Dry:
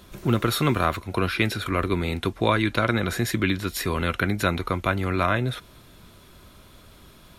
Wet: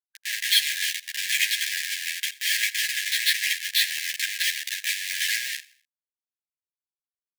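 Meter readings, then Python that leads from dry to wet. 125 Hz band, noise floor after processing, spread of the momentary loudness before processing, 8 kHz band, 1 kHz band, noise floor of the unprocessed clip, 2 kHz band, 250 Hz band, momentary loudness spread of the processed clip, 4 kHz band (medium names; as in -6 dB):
under -40 dB, under -85 dBFS, 4 LU, +11.0 dB, under -40 dB, -51 dBFS, +3.0 dB, under -40 dB, 7 LU, +9.0 dB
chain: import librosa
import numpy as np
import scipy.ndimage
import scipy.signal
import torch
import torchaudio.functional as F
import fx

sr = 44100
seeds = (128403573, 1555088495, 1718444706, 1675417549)

p1 = fx.freq_compress(x, sr, knee_hz=3100.0, ratio=4.0)
p2 = fx.level_steps(p1, sr, step_db=22)
p3 = p1 + (p2 * librosa.db_to_amplitude(2.0))
p4 = fx.schmitt(p3, sr, flips_db=-24.0)
p5 = fx.brickwall_highpass(p4, sr, low_hz=1600.0)
p6 = p5 + fx.echo_feedback(p5, sr, ms=83, feedback_pct=40, wet_db=-20, dry=0)
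p7 = fx.ensemble(p6, sr)
y = p7 * librosa.db_to_amplitude(8.5)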